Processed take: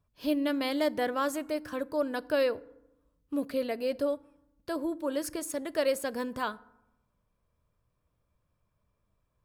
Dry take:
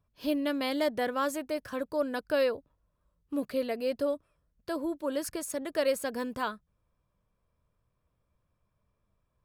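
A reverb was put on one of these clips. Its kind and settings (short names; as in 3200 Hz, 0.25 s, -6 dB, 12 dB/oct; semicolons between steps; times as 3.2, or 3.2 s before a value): FDN reverb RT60 0.89 s, low-frequency decay 1.35×, high-frequency decay 0.5×, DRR 18.5 dB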